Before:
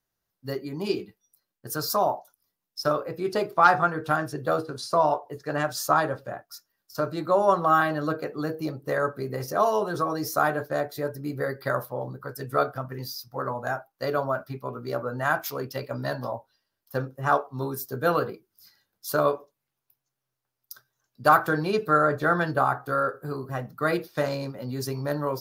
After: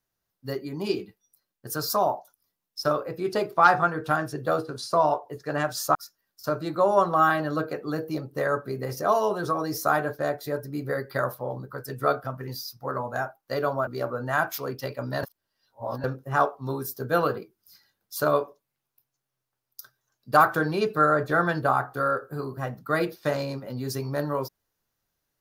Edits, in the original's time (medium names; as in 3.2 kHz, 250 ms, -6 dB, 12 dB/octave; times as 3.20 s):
5.95–6.46 s: delete
14.38–14.79 s: delete
16.15–16.96 s: reverse